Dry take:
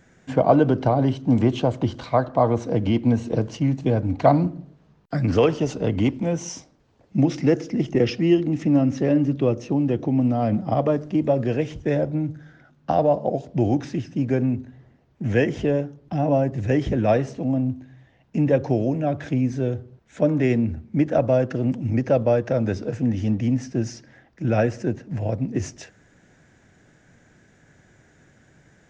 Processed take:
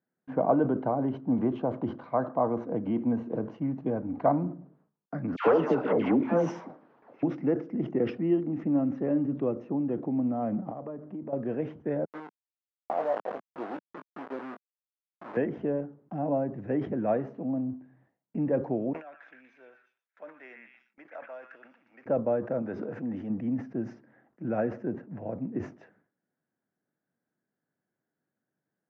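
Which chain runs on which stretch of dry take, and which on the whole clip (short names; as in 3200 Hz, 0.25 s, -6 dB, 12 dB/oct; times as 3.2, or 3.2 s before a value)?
5.36–7.23 overdrive pedal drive 23 dB, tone 6000 Hz, clips at -6 dBFS + dispersion lows, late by 0.108 s, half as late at 1000 Hz
10.7–11.33 high shelf 4200 Hz -11.5 dB + compressor 4:1, threshold -28 dBFS
12.05–15.37 level-crossing sampler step -20.5 dBFS + HPF 480 Hz + doubler 19 ms -11 dB
18.93–22.06 HPF 1500 Hz + delay with a stepping band-pass 0.12 s, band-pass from 1900 Hz, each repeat 0.7 oct, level -1 dB
22.62–23.3 low shelf 350 Hz -6.5 dB + sustainer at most 22 dB/s
whole clip: Chebyshev band-pass 200–1300 Hz, order 2; gate with hold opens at -45 dBFS; sustainer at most 150 dB/s; gain -7 dB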